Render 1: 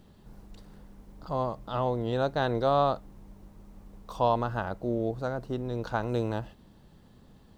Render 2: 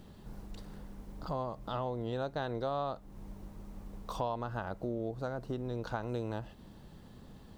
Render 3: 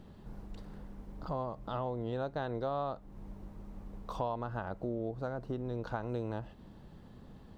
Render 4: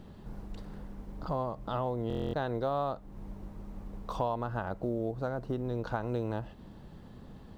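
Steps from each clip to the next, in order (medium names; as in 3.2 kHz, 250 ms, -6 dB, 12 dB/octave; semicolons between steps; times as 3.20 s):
compression 3:1, threshold -39 dBFS, peak gain reduction 14.5 dB; trim +3 dB
treble shelf 3.8 kHz -10 dB
short-mantissa float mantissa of 6-bit; buffer glitch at 2.08 s, samples 1024, times 10; trim +3.5 dB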